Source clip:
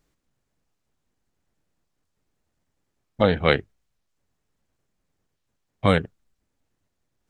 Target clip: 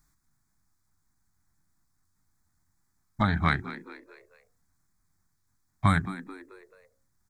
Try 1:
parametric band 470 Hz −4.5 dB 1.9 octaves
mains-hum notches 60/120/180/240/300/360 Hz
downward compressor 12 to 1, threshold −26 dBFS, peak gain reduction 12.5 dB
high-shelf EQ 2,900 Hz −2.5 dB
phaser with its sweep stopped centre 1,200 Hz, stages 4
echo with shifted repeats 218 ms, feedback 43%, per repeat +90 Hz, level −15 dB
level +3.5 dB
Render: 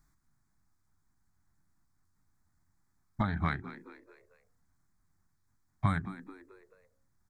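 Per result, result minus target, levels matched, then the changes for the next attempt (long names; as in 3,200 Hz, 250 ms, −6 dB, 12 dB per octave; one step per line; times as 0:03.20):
downward compressor: peak gain reduction +7.5 dB; 4,000 Hz band −5.0 dB
change: downward compressor 12 to 1, threshold −18 dBFS, peak gain reduction 5 dB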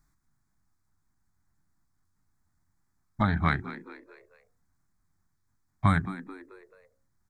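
4,000 Hz band −4.0 dB
change: high-shelf EQ 2,900 Hz +4.5 dB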